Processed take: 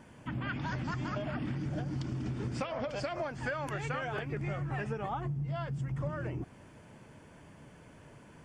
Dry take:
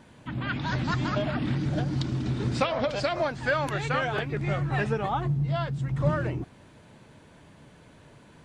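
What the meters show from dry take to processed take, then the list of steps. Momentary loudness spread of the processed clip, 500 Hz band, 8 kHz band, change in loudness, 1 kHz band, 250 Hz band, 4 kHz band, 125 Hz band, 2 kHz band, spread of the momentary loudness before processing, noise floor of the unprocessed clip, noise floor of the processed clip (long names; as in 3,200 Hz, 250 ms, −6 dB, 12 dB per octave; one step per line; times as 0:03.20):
19 LU, −9.0 dB, −7.0 dB, −8.0 dB, −8.5 dB, −7.5 dB, −11.5 dB, −7.5 dB, −8.5 dB, 4 LU, −54 dBFS, −55 dBFS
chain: parametric band 3,900 Hz −14.5 dB 0.23 octaves
downward compressor, threshold −31 dBFS, peak gain reduction 12 dB
level −1.5 dB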